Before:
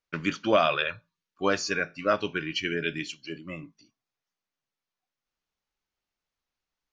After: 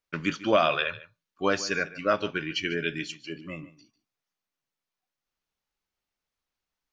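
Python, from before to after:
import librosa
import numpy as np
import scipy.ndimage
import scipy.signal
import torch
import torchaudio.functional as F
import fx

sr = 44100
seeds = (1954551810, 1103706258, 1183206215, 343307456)

y = x + 10.0 ** (-17.5 / 20.0) * np.pad(x, (int(146 * sr / 1000.0), 0))[:len(x)]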